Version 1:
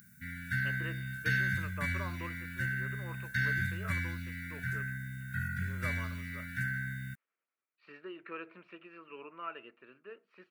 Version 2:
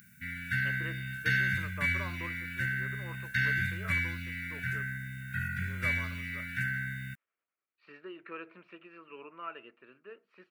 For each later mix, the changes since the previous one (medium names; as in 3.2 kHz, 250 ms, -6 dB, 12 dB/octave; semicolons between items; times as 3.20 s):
background: add peaking EQ 2.6 kHz +11 dB 0.7 oct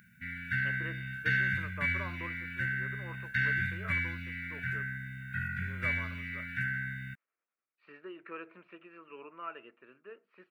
master: add tone controls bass -2 dB, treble -13 dB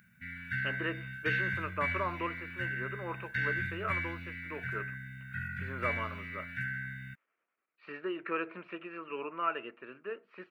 speech +9.5 dB; background -3.0 dB